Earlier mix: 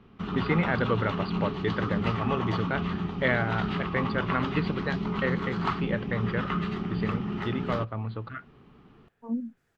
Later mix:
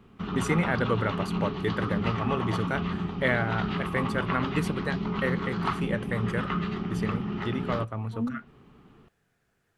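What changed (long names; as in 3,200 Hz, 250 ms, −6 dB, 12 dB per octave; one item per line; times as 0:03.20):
first voice: remove linear-phase brick-wall low-pass 4,900 Hz
second voice: entry −1.10 s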